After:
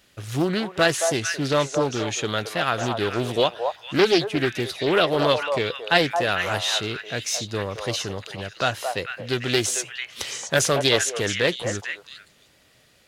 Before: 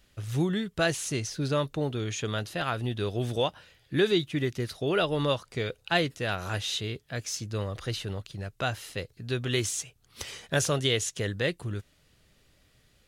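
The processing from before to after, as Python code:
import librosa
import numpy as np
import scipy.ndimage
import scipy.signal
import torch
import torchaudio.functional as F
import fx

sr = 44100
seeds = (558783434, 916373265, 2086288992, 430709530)

p1 = fx.highpass(x, sr, hz=230.0, slope=6)
p2 = p1 + fx.echo_stepped(p1, sr, ms=223, hz=760.0, octaves=1.4, feedback_pct=70, wet_db=-1.5, dry=0)
p3 = fx.doppler_dist(p2, sr, depth_ms=0.36)
y = p3 * librosa.db_to_amplitude(7.5)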